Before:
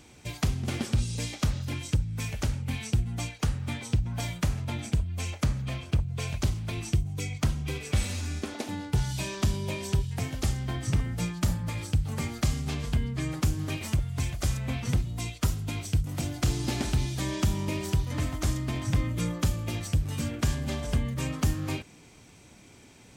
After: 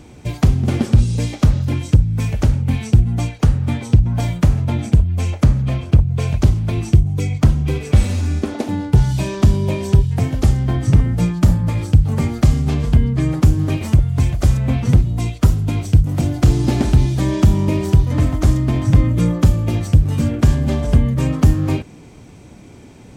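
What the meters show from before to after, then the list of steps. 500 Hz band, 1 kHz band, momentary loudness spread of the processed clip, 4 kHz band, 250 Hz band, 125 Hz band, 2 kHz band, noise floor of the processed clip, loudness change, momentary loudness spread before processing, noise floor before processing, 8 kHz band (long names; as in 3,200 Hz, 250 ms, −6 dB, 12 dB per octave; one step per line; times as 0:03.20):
+12.5 dB, +9.5 dB, 5 LU, +3.5 dB, +14.0 dB, +14.5 dB, +5.5 dB, −40 dBFS, +13.5 dB, 4 LU, −53 dBFS, +3.0 dB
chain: tilt shelving filter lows +6 dB, about 1,100 Hz
level +8.5 dB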